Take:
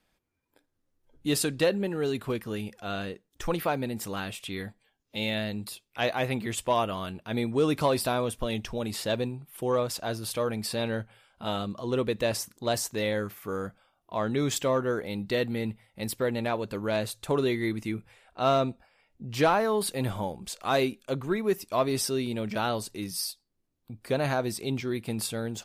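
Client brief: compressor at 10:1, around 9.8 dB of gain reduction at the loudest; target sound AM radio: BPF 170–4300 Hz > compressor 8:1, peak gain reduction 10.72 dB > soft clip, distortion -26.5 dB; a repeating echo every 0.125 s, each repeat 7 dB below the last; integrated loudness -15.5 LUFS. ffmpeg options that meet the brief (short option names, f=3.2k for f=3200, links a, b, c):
-af "acompressor=threshold=-29dB:ratio=10,highpass=170,lowpass=4.3k,aecho=1:1:125|250|375|500|625:0.447|0.201|0.0905|0.0407|0.0183,acompressor=threshold=-37dB:ratio=8,asoftclip=threshold=-26.5dB,volume=26.5dB"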